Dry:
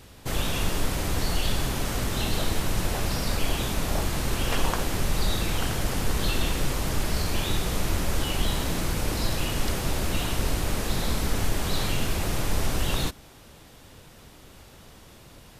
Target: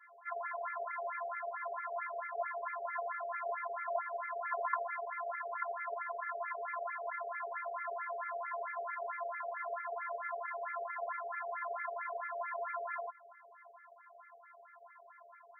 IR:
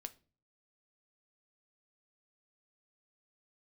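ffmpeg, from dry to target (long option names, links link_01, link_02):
-filter_complex "[0:a]highpass=270,afftfilt=real='hypot(re,im)*cos(PI*b)':imag='0':win_size=512:overlap=0.75,asplit=2[link_01][link_02];[link_02]acompressor=threshold=-36dB:ratio=4,volume=-2.5dB[link_03];[link_01][link_03]amix=inputs=2:normalize=0,bandreject=frequency=60:width_type=h:width=6,bandreject=frequency=120:width_type=h:width=6,bandreject=frequency=180:width_type=h:width=6,bandreject=frequency=240:width_type=h:width=6,bandreject=frequency=300:width_type=h:width=6,bandreject=frequency=360:width_type=h:width=6,afftfilt=real='re*between(b*sr/1024,570*pow(1700/570,0.5+0.5*sin(2*PI*4.5*pts/sr))/1.41,570*pow(1700/570,0.5+0.5*sin(2*PI*4.5*pts/sr))*1.41)':imag='im*between(b*sr/1024,570*pow(1700/570,0.5+0.5*sin(2*PI*4.5*pts/sr))/1.41,570*pow(1700/570,0.5+0.5*sin(2*PI*4.5*pts/sr))*1.41)':win_size=1024:overlap=0.75,volume=1.5dB"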